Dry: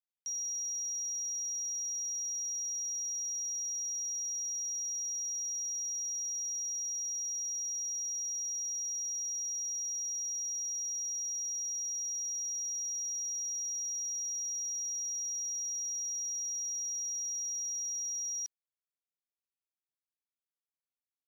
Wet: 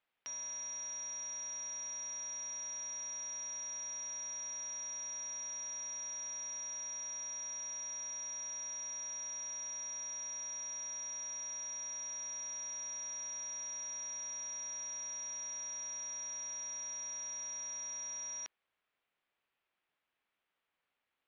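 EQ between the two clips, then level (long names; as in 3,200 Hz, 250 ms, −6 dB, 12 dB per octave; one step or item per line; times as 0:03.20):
low-pass filter 3,000 Hz 24 dB per octave
low-shelf EQ 330 Hz −10 dB
+17.5 dB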